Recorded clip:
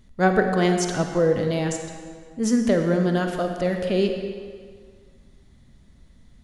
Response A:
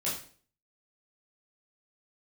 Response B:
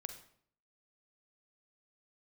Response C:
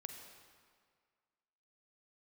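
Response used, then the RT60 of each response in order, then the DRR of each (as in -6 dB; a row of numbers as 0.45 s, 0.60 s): C; 0.45 s, 0.60 s, 1.9 s; -8.0 dB, 7.0 dB, 4.5 dB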